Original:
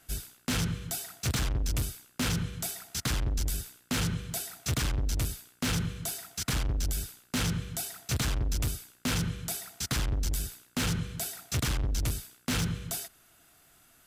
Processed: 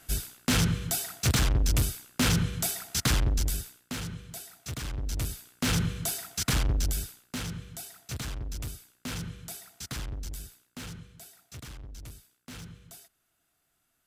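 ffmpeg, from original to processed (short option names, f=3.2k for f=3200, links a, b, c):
-af "volume=15.5dB,afade=t=out:st=3.15:d=0.85:silence=0.251189,afade=t=in:st=4.81:d=1.03:silence=0.298538,afade=t=out:st=6.72:d=0.71:silence=0.316228,afade=t=out:st=10.03:d=1.09:silence=0.398107"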